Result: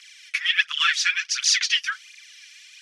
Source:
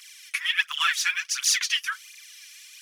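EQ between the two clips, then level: HPF 1300 Hz 24 dB/oct; dynamic EQ 4900 Hz, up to +5 dB, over -38 dBFS, Q 1.2; air absorption 89 m; +3.5 dB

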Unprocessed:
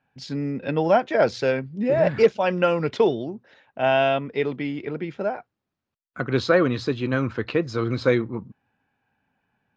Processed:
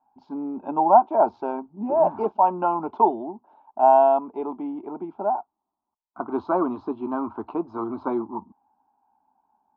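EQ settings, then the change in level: synth low-pass 910 Hz, resonance Q 4.9; low shelf 180 Hz -8.5 dB; fixed phaser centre 500 Hz, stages 6; 0.0 dB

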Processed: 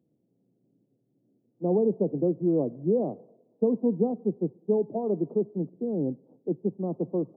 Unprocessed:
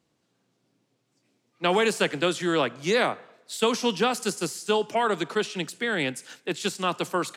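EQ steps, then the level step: Gaussian blur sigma 18 samples; HPF 130 Hz; +5.5 dB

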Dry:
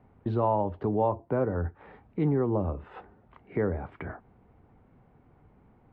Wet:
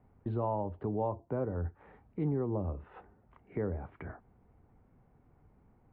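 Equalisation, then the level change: LPF 2900 Hz 12 dB/oct; low shelf 79 Hz +6.5 dB; dynamic EQ 1700 Hz, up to -4 dB, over -42 dBFS, Q 0.98; -7.0 dB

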